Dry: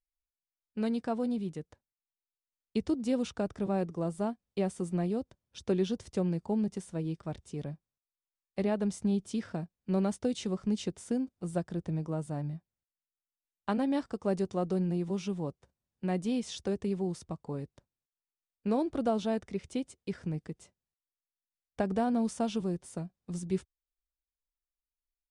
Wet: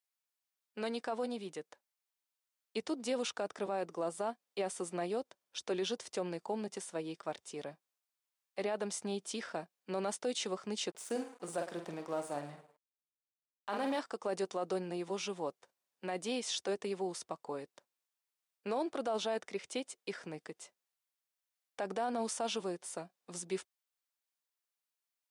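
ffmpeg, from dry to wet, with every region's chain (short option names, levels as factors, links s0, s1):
-filter_complex "[0:a]asettb=1/sr,asplit=3[s0][s1][s2];[s0]atrim=end=10.904[s3];[s1]atrim=start=10.9:end=13.99,asetpts=PTS-STARTPTS,afade=t=in:d=0.004:c=qsin,afade=t=out:st=3.086:d=0.004:c=qsin,asplit=2[s4][s5];[s5]adelay=48,volume=0.398[s6];[s4][s6]amix=inputs=2:normalize=0,atrim=end_sample=136269,aecho=1:1:108|216|324|432:0.158|0.0697|0.0307|0.0135,atrim=end_sample=136269,aeval=exprs='sgn(val(0))*max(abs(val(0))-0.002,0)':c=same[s7];[s2]atrim=start=13.986[s8];[s3][s7]acrossfade=d=0.004:c1=hsin:c2=qsin[s9];[s9][s8]acrossfade=d=0.004:c1=qsin:c2=hsin,highpass=560,alimiter=level_in=2.37:limit=0.0631:level=0:latency=1:release=19,volume=0.422,volume=1.78"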